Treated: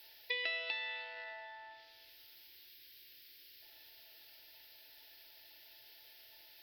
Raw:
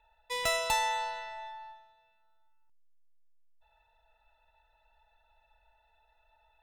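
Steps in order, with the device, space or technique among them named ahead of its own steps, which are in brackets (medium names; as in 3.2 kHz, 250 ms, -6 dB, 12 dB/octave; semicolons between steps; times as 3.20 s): local Wiener filter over 15 samples; high-pass 260 Hz; baby monitor (band-pass 320–4200 Hz; compression 10:1, threshold -46 dBFS, peak gain reduction 20.5 dB; white noise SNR 18 dB); low-pass that closes with the level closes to 2.9 kHz, closed at -47.5 dBFS; FFT filter 120 Hz 0 dB, 200 Hz -20 dB, 310 Hz +4 dB, 690 Hz -8 dB, 1.1 kHz -19 dB, 1.7 kHz +4 dB, 3.2 kHz +11 dB, 5.1 kHz +11 dB, 7.6 kHz -29 dB, 14 kHz +15 dB; trim +9 dB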